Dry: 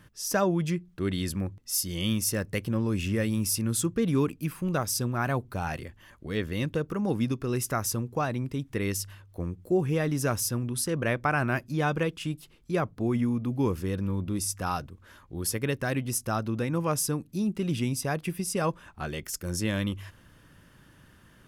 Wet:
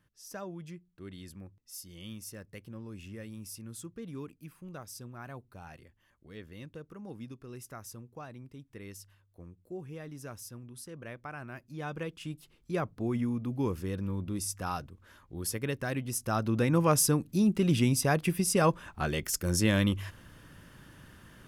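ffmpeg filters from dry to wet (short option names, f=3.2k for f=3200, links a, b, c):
-af "volume=3dB,afade=t=in:st=11.55:d=1.17:silence=0.251189,afade=t=in:st=16.15:d=0.54:silence=0.421697"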